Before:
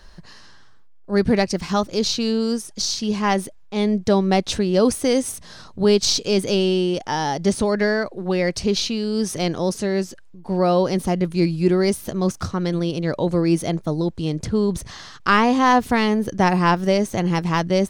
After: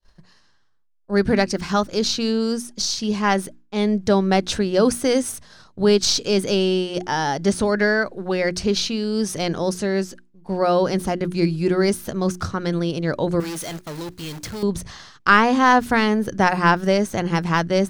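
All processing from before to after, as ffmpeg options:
-filter_complex "[0:a]asettb=1/sr,asplit=3[a][b][c];[a]atrim=end=13.404[d];[b]atrim=start=13.4:end=14.63,asetpts=PTS-STARTPTS,afade=t=in:d=0.004:c=qsin,afade=t=out:st=1.226:d=0.004:c=qsin,tiltshelf=f=880:g=-6.5,acrusher=bits=7:dc=4:mix=0:aa=0.000001,asoftclip=type=hard:threshold=-27.5dB[e];[c]atrim=start=14.626[f];[d][e]acrossfade=d=0.004:c1=hsin:c2=qsin[g];[g][f]acrossfade=d=0.004:c1=qsin:c2=hsin,agate=range=-33dB:threshold=-34dB:ratio=3:detection=peak,adynamicequalizer=threshold=0.00891:dfrequency=1500:dqfactor=3.4:tfrequency=1500:tqfactor=3.4:attack=5:release=100:ratio=0.375:range=3.5:mode=boostabove:tftype=bell,bandreject=f=60:t=h:w=6,bandreject=f=120:t=h:w=6,bandreject=f=180:t=h:w=6,bandreject=f=240:t=h:w=6,bandreject=f=300:t=h:w=6,bandreject=f=360:t=h:w=6"

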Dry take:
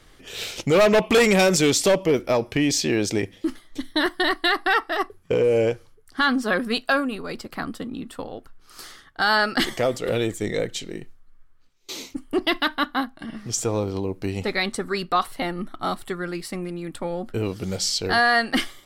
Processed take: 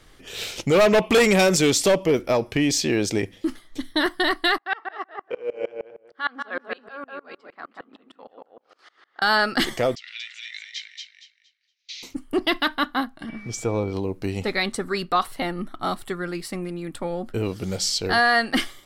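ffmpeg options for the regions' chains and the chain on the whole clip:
-filter_complex "[0:a]asettb=1/sr,asplit=3[a][b][c];[a]atrim=end=4.584[d];[b]atrim=start=4.58:end=9.22,asetpts=PTS-STARTPTS,afade=t=in:d=0.004:c=qsin,afade=t=out:st=4.636:d=0.004:c=qsin,highpass=500,lowpass=2.9k,asplit=2[e][f];[f]adelay=189,lowpass=f=1.7k:p=1,volume=-4dB,asplit=2[g][h];[h]adelay=189,lowpass=f=1.7k:p=1,volume=0.26,asplit=2[i][j];[j]adelay=189,lowpass=f=1.7k:p=1,volume=0.26,asplit=2[k][l];[l]adelay=189,lowpass=f=1.7k:p=1,volume=0.26[m];[e][g][i][k][m]amix=inputs=5:normalize=0,atrim=end_sample=204624,aeval=exprs='val(0)*pow(10,-28*if(lt(mod(-6.5*n/s,1),2*abs(-6.5)/1000),1-mod(-6.5*n/s,1)/(2*abs(-6.5)/1000),(mod(-6.5*n/s,1)-2*abs(-6.5)/1000)/(1-2*abs(-6.5)/1000))/20)':c=same[n];[c]atrim=start=9.216[o];[d][n]acrossfade=d=0.004:c1=hsin:c2=qsin[p];[p][o]acrossfade=d=0.004:c1=qsin:c2=hsin,asettb=1/sr,asplit=3[q][r][s];[q]atrim=end=9.954[t];[r]atrim=start=9.95:end=12.03,asetpts=PTS-STARTPTS,afade=t=in:d=0.004:c=qsin,afade=t=out:st=2.076:d=0.004:c=qsin,aeval=exprs='if(lt(val(0),0),0.708*val(0),val(0))':c=same,asuperpass=centerf=3400:order=8:qfactor=0.87,aecho=1:1:232|464|696|928:0.668|0.174|0.0452|0.0117,atrim=end_sample=91728[u];[s]atrim=start=12.026[v];[t][u]acrossfade=d=0.004:c1=hsin:c2=qsin[w];[w][v]acrossfade=d=0.004:c1=qsin:c2=hsin,asettb=1/sr,asplit=3[x][y][z];[x]atrim=end=13.294[aa];[y]atrim=start=13.29:end=13.93,asetpts=PTS-STARTPTS,afade=t=in:d=0.004:c=qsin,afade=t=out:st=0.636:d=0.004:c=qsin,highshelf=f=3.7k:g=-10,aeval=exprs='val(0)+0.00708*sin(2*PI*2300*n/s)':c=same[ab];[z]atrim=start=13.926[ac];[aa][ab]acrossfade=d=0.004:c1=hsin:c2=qsin[ad];[ad][ac]acrossfade=d=0.004:c1=qsin:c2=hsin"

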